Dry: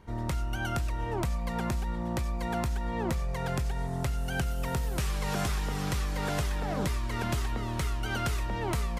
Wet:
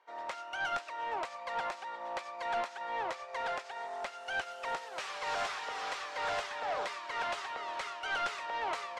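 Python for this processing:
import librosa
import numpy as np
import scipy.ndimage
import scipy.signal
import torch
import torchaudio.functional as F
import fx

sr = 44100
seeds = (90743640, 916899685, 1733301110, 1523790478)

y = scipy.signal.sosfilt(scipy.signal.butter(4, 580.0, 'highpass', fs=sr, output='sos'), x)
y = 10.0 ** (-33.0 / 20.0) * np.tanh(y / 10.0 ** (-33.0 / 20.0))
y = fx.air_absorb(y, sr, metres=120.0)
y = fx.upward_expand(y, sr, threshold_db=-60.0, expansion=1.5)
y = y * 10.0 ** (6.0 / 20.0)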